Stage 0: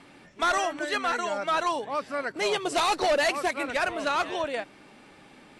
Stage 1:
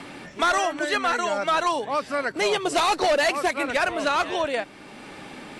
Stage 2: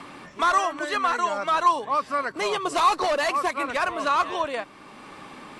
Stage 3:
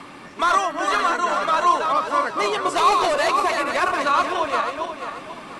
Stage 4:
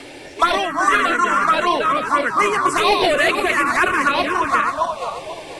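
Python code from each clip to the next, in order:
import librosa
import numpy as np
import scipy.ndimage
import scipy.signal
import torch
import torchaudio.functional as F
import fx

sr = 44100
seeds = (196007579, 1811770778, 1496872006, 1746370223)

y1 = fx.band_squash(x, sr, depth_pct=40)
y1 = y1 * librosa.db_to_amplitude(3.5)
y2 = fx.peak_eq(y1, sr, hz=1100.0, db=13.0, octaves=0.29)
y2 = y2 * librosa.db_to_amplitude(-4.0)
y3 = fx.reverse_delay_fb(y2, sr, ms=243, feedback_pct=57, wet_db=-4)
y3 = y3 * librosa.db_to_amplitude(2.0)
y4 = fx.env_phaser(y3, sr, low_hz=170.0, high_hz=1300.0, full_db=-14.5)
y4 = y4 * librosa.db_to_amplitude(8.5)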